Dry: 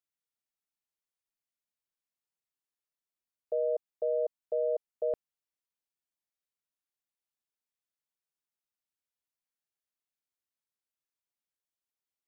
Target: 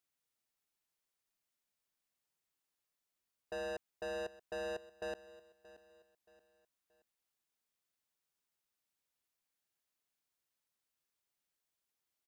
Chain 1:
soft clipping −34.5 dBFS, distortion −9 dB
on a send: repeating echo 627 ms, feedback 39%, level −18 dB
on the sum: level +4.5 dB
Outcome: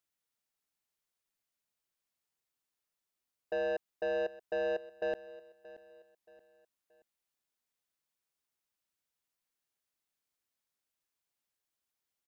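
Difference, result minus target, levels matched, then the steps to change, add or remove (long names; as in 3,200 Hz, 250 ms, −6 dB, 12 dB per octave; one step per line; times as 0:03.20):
soft clipping: distortion −4 dB
change: soft clipping −43.5 dBFS, distortion −5 dB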